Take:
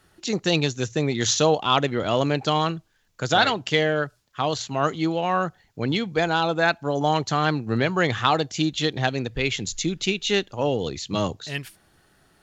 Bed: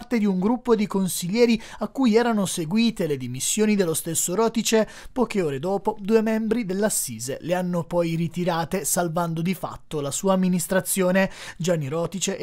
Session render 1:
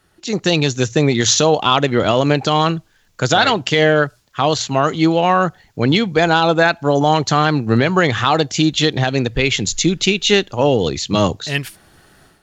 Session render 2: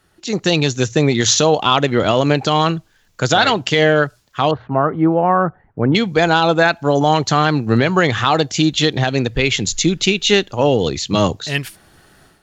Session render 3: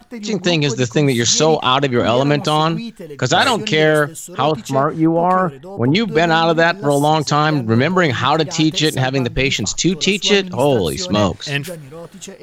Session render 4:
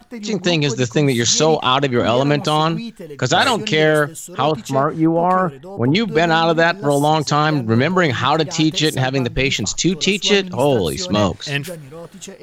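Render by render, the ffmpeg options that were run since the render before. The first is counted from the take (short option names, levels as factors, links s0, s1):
-af "alimiter=limit=0.237:level=0:latency=1:release=90,dynaudnorm=f=250:g=3:m=3.76"
-filter_complex "[0:a]asettb=1/sr,asplit=3[s0][s1][s2];[s0]atrim=end=4.514[s3];[s1]atrim=start=4.51:end=5.95,asetpts=PTS-STARTPTS,afade=t=in:d=0.004:c=qsin,afade=t=out:st=1.436:d=0.004:c=qsin,lowpass=f=1500:w=0.5412,lowpass=f=1500:w=1.3066[s4];[s2]atrim=start=5.946[s5];[s3][s4]acrossfade=d=0.004:c1=hsin:c2=qsin[s6];[s6][s5]acrossfade=d=0.004:c1=qsin:c2=hsin"
-filter_complex "[1:a]volume=0.398[s0];[0:a][s0]amix=inputs=2:normalize=0"
-af "volume=0.891"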